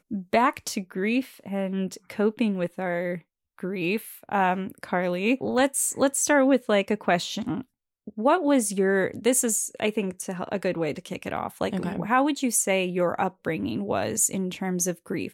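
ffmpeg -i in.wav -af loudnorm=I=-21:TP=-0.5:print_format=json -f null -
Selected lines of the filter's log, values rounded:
"input_i" : "-25.5",
"input_tp" : "-8.8",
"input_lra" : "3.2",
"input_thresh" : "-35.7",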